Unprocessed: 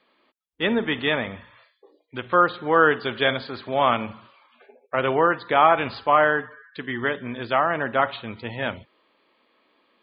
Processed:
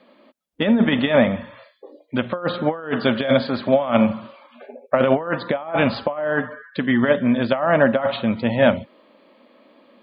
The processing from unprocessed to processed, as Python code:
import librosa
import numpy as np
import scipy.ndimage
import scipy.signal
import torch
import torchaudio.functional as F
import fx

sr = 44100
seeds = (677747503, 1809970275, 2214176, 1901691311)

y = fx.over_compress(x, sr, threshold_db=-24.0, ratio=-0.5)
y = fx.small_body(y, sr, hz=(230.0, 560.0), ring_ms=25, db=14)
y = fx.dynamic_eq(y, sr, hz=340.0, q=1.1, threshold_db=-26.0, ratio=4.0, max_db=-5)
y = F.gain(torch.from_numpy(y), 1.0).numpy()